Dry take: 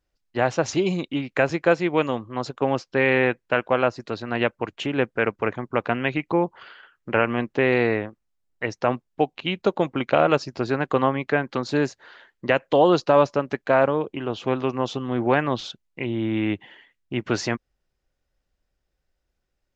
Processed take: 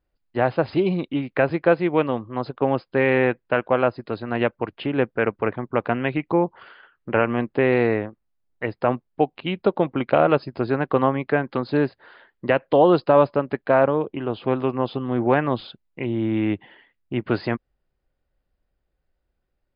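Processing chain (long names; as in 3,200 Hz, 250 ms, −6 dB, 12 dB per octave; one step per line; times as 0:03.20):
linear-phase brick-wall low-pass 5,100 Hz
high-shelf EQ 2,400 Hz −10 dB
level +2 dB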